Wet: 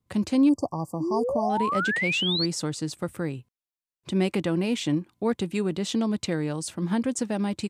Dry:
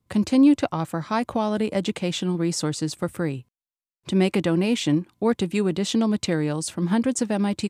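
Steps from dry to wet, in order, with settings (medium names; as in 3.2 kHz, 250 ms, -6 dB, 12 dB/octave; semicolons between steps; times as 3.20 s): 1.00–2.46 s: painted sound rise 300–4700 Hz -23 dBFS; 0.49–1.50 s: brick-wall FIR band-stop 1.2–4.5 kHz; trim -4 dB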